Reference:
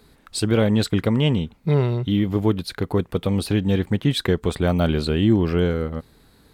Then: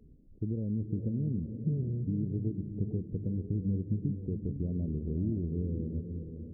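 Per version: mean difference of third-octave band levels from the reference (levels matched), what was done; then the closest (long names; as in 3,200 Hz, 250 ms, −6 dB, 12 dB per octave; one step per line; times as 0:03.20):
14.0 dB: downward compressor 4 to 1, threshold −29 dBFS, peak gain reduction 14 dB
Gaussian smoothing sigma 25 samples
on a send: feedback delay with all-pass diffusion 473 ms, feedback 42%, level −6.5 dB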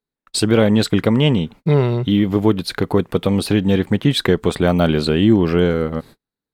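1.0 dB: in parallel at +1 dB: downward compressor 4 to 1, threshold −30 dBFS, peak gain reduction 15 dB
on the sum: high-shelf EQ 4,700 Hz −2.5 dB
noise gate −38 dBFS, range −43 dB
parametric band 61 Hz −13 dB 1.1 octaves
level +3.5 dB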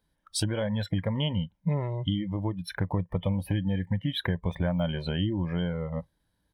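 6.5 dB: EQ curve with evenly spaced ripples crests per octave 1.2, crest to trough 8 dB
downward compressor 6 to 1, threshold −23 dBFS, peak gain reduction 11 dB
noise reduction from a noise print of the clip's start 21 dB
comb filter 1.3 ms, depth 40%
level −1.5 dB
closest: second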